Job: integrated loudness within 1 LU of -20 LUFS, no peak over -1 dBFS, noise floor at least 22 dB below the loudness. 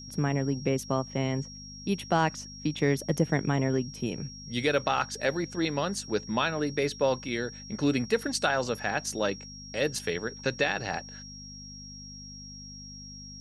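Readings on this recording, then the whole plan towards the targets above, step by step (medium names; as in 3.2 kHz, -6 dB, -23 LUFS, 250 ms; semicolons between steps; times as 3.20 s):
hum 50 Hz; highest harmonic 250 Hz; hum level -46 dBFS; steady tone 5.6 kHz; tone level -44 dBFS; loudness -29.5 LUFS; peak level -11.0 dBFS; loudness target -20.0 LUFS
-> de-hum 50 Hz, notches 5; band-stop 5.6 kHz, Q 30; trim +9.5 dB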